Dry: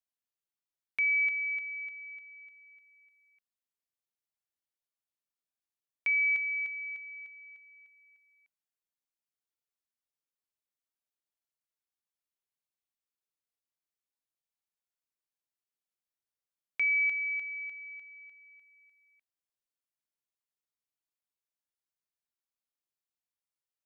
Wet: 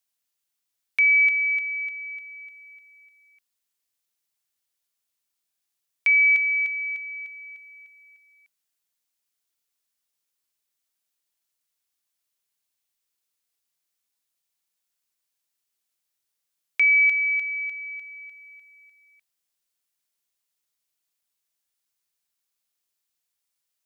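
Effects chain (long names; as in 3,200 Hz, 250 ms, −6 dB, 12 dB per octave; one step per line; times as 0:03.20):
high-shelf EQ 2,100 Hz +9.5 dB
level +4.5 dB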